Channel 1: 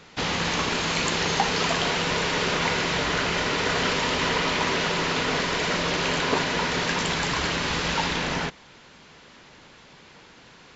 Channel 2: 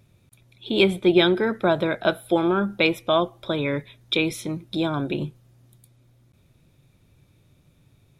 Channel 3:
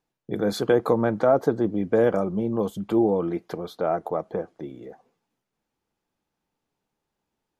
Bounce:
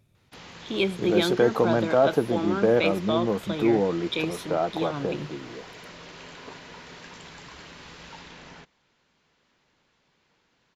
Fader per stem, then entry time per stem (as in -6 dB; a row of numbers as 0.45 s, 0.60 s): -19.0 dB, -6.5 dB, -1.0 dB; 0.15 s, 0.00 s, 0.70 s